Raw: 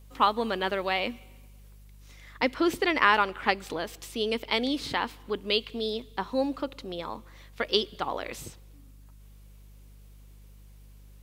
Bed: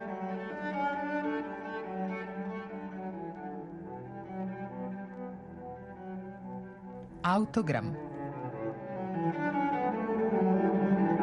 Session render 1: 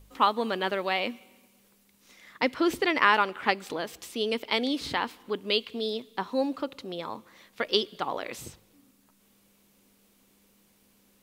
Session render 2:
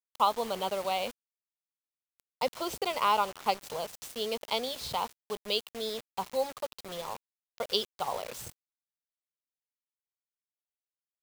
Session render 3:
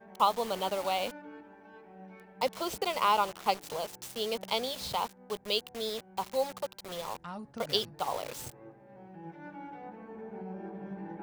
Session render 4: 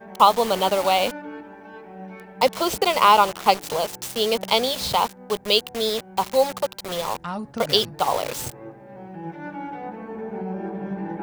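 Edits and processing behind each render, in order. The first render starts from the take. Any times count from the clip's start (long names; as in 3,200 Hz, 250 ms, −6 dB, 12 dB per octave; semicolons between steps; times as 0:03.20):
hum removal 50 Hz, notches 3
phaser with its sweep stopped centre 720 Hz, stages 4; bit reduction 7 bits
mix in bed −14.5 dB
level +11.5 dB; brickwall limiter −2 dBFS, peak gain reduction 2.5 dB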